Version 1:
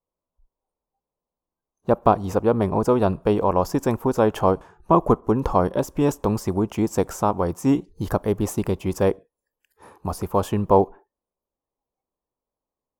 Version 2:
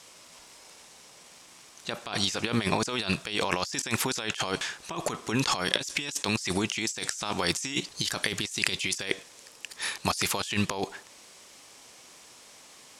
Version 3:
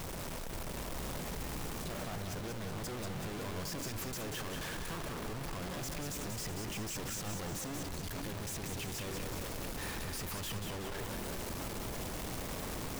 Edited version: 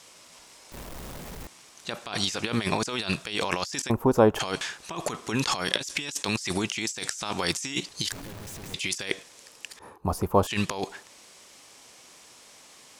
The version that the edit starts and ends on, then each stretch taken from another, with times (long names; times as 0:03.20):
2
0:00.72–0:01.47: punch in from 3
0:03.90–0:04.39: punch in from 1
0:08.12–0:08.74: punch in from 3
0:09.79–0:10.47: punch in from 1